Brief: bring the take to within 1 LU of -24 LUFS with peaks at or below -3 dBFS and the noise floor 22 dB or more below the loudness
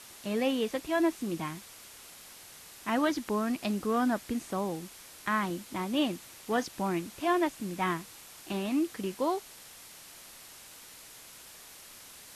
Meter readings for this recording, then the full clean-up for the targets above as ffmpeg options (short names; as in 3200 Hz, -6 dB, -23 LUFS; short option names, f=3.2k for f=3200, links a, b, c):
noise floor -51 dBFS; noise floor target -54 dBFS; loudness -31.5 LUFS; peak -15.0 dBFS; loudness target -24.0 LUFS
-> -af "afftdn=nr=6:nf=-51"
-af "volume=7.5dB"